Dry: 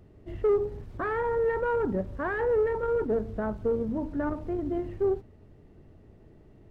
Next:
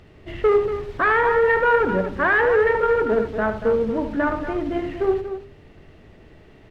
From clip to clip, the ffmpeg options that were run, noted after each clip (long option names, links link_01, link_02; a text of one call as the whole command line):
ffmpeg -i in.wav -filter_complex "[0:a]equalizer=frequency=2700:width=0.46:gain=13.5,bandreject=frequency=50:width_type=h:width=6,bandreject=frequency=100:width_type=h:width=6,bandreject=frequency=150:width_type=h:width=6,bandreject=frequency=200:width_type=h:width=6,bandreject=frequency=250:width_type=h:width=6,bandreject=frequency=300:width_type=h:width=6,bandreject=frequency=350:width_type=h:width=6,bandreject=frequency=400:width_type=h:width=6,asplit=2[link_01][link_02];[link_02]aecho=0:1:75.8|236.2:0.316|0.316[link_03];[link_01][link_03]amix=inputs=2:normalize=0,volume=5dB" out.wav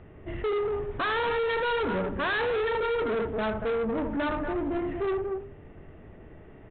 ffmpeg -i in.wav -af "lowpass=1800,aresample=8000,asoftclip=type=tanh:threshold=-25.5dB,aresample=44100" out.wav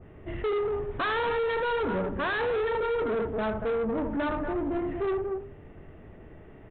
ffmpeg -i in.wav -af "adynamicequalizer=threshold=0.00891:dfrequency=1700:dqfactor=0.7:tfrequency=1700:tqfactor=0.7:attack=5:release=100:ratio=0.375:range=3:mode=cutabove:tftype=highshelf" out.wav